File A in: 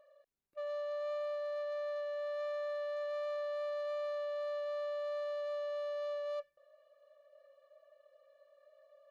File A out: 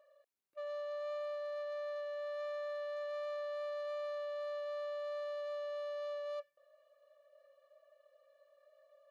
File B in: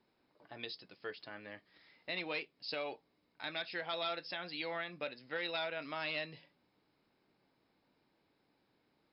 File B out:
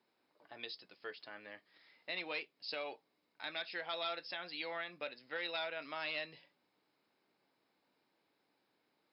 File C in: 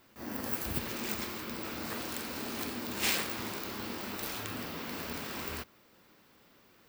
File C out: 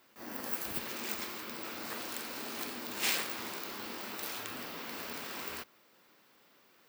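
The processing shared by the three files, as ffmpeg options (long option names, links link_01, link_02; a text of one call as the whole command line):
ffmpeg -i in.wav -af "highpass=frequency=390:poles=1,volume=-1dB" out.wav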